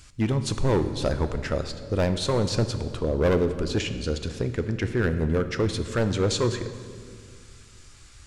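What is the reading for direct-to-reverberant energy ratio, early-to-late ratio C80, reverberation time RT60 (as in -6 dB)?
9.0 dB, 11.5 dB, 2.1 s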